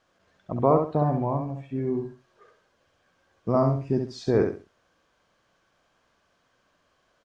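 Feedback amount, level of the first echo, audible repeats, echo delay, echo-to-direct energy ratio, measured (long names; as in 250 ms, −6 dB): 26%, −5.5 dB, 3, 67 ms, −5.0 dB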